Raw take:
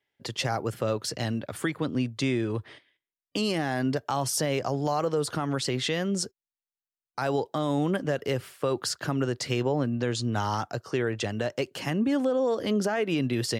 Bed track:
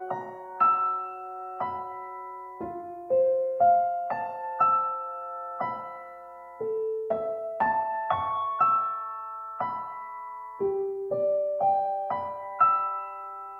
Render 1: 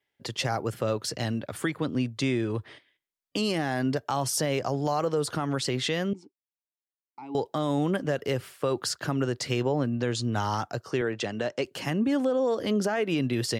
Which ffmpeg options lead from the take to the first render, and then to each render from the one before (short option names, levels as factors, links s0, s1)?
-filter_complex "[0:a]asettb=1/sr,asplit=3[s0][s1][s2];[s0]atrim=end=6.134[s3];[s1]atrim=start=6.13:end=7.35,asetpts=PTS-STARTPTS,afade=t=in:d=0.004:c=qsin,afade=t=out:st=1.216:d=0.004:c=qsin,asplit=3[s4][s5][s6];[s4]bandpass=f=300:t=q:w=8,volume=1[s7];[s5]bandpass=f=870:t=q:w=8,volume=0.501[s8];[s6]bandpass=f=2240:t=q:w=8,volume=0.355[s9];[s7][s8][s9]amix=inputs=3:normalize=0[s10];[s2]atrim=start=7.346[s11];[s3][s10]acrossfade=d=0.004:c1=hsin:c2=qsin[s12];[s12][s11]acrossfade=d=0.004:c1=qsin:c2=hsin,asettb=1/sr,asplit=3[s13][s14][s15];[s13]atrim=end=11.014[s16];[s14]atrim=start=11.01:end=11.65,asetpts=PTS-STARTPTS,afade=t=in:d=0.004:c=qsin,afade=t=out:st=0.636:d=0.004:c=qsin,highpass=150,lowpass=7800[s17];[s15]atrim=start=11.646[s18];[s16][s17]acrossfade=d=0.004:c1=hsin:c2=qsin[s19];[s19][s18]acrossfade=d=0.004:c1=qsin:c2=hsin"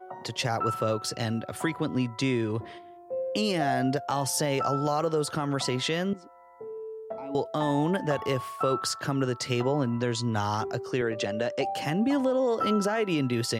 -filter_complex "[1:a]volume=0.355[s0];[0:a][s0]amix=inputs=2:normalize=0"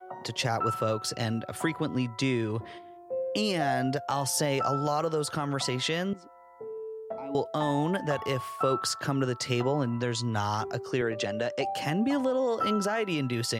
-af "adynamicequalizer=threshold=0.0178:dfrequency=300:dqfactor=0.72:tfrequency=300:tqfactor=0.72:attack=5:release=100:ratio=0.375:range=2:mode=cutabove:tftype=bell"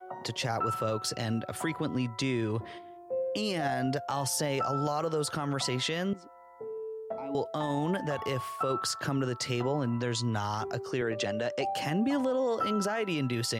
-af "alimiter=limit=0.0891:level=0:latency=1:release=34"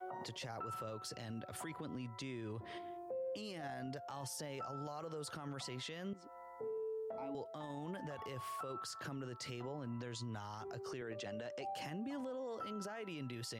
-af "acompressor=threshold=0.01:ratio=5,alimiter=level_in=4.22:limit=0.0631:level=0:latency=1:release=29,volume=0.237"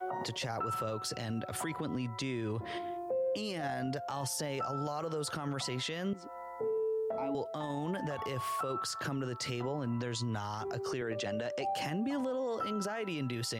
-af "volume=2.82"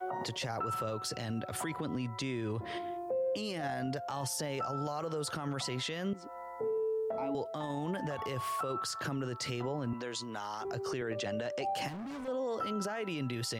-filter_complex "[0:a]asettb=1/sr,asplit=3[s0][s1][s2];[s0]atrim=end=9.934[s3];[s1]atrim=start=9.93:end=10.65,asetpts=PTS-STARTPTS,afade=t=in:d=0.004:c=qsin,afade=t=out:st=0.716:d=0.004:c=qsin,highpass=290[s4];[s2]atrim=start=10.646[s5];[s3][s4]acrossfade=d=0.004:c1=hsin:c2=qsin[s6];[s6][s5]acrossfade=d=0.004:c1=qsin:c2=hsin,asettb=1/sr,asplit=3[s7][s8][s9];[s7]atrim=end=11.884[s10];[s8]atrim=start=11.88:end=12.28,asetpts=PTS-STARTPTS,afade=t=in:d=0.004:c=qsin,afade=t=out:st=0.396:d=0.004:c=qsin,asoftclip=type=hard:threshold=0.0106[s11];[s9]atrim=start=12.276[s12];[s10][s11]acrossfade=d=0.004:c1=hsin:c2=qsin[s13];[s13][s12]acrossfade=d=0.004:c1=qsin:c2=hsin"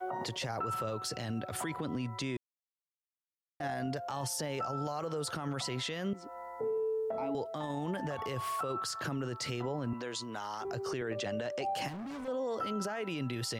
-filter_complex "[0:a]asplit=3[s0][s1][s2];[s0]atrim=end=2.37,asetpts=PTS-STARTPTS,afade=t=out:st=2.366:d=0.004:c=hsin[s3];[s1]atrim=start=2.37:end=3.6,asetpts=PTS-STARTPTS,volume=0[s4];[s2]atrim=start=3.6,asetpts=PTS-STARTPTS,afade=t=in:d=0.004:c=hsin[s5];[s3][s4][s5]concat=n=3:v=0:a=1"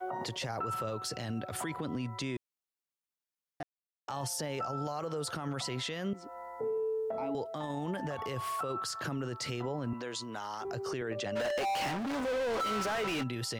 -filter_complex "[0:a]asplit=3[s0][s1][s2];[s0]afade=t=out:st=11.35:d=0.02[s3];[s1]asplit=2[s4][s5];[s5]highpass=f=720:p=1,volume=50.1,asoftclip=type=tanh:threshold=0.0447[s6];[s4][s6]amix=inputs=2:normalize=0,lowpass=f=3300:p=1,volume=0.501,afade=t=in:st=11.35:d=0.02,afade=t=out:st=13.22:d=0.02[s7];[s2]afade=t=in:st=13.22:d=0.02[s8];[s3][s7][s8]amix=inputs=3:normalize=0,asplit=3[s9][s10][s11];[s9]atrim=end=3.63,asetpts=PTS-STARTPTS,afade=t=out:st=3.626:d=0.004:c=hsin[s12];[s10]atrim=start=3.63:end=4.08,asetpts=PTS-STARTPTS,volume=0[s13];[s11]atrim=start=4.08,asetpts=PTS-STARTPTS,afade=t=in:d=0.004:c=hsin[s14];[s12][s13][s14]concat=n=3:v=0:a=1"